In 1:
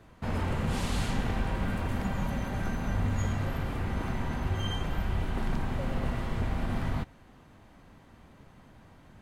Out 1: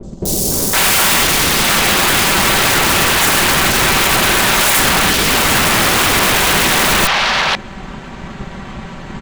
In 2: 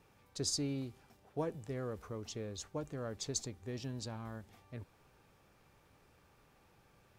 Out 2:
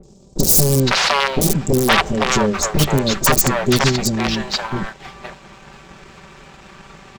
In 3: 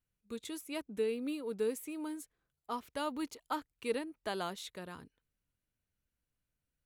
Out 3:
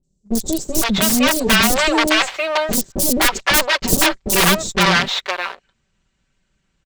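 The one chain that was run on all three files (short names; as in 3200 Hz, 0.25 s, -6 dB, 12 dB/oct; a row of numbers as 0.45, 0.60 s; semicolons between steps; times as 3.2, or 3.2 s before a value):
minimum comb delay 5.2 ms; elliptic low-pass 7700 Hz, stop band 40 dB; wrapped overs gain 36 dB; three bands offset in time lows, highs, mids 30/510 ms, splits 540/5300 Hz; sample leveller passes 1; normalise peaks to -1.5 dBFS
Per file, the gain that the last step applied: +26.0, +28.0, +26.0 dB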